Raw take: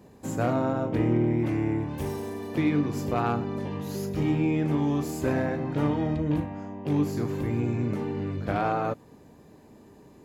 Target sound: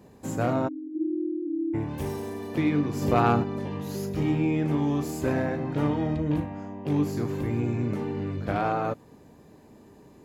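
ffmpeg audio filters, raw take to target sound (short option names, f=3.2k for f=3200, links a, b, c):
-filter_complex "[0:a]asplit=3[a][b][c];[a]afade=t=out:st=0.67:d=0.02[d];[b]asuperpass=centerf=310:order=8:qfactor=4.3,afade=t=in:st=0.67:d=0.02,afade=t=out:st=1.73:d=0.02[e];[c]afade=t=in:st=1.73:d=0.02[f];[d][e][f]amix=inputs=3:normalize=0,asplit=3[g][h][i];[g]afade=t=out:st=3.01:d=0.02[j];[h]acontrast=29,afade=t=in:st=3.01:d=0.02,afade=t=out:st=3.42:d=0.02[k];[i]afade=t=in:st=3.42:d=0.02[l];[j][k][l]amix=inputs=3:normalize=0"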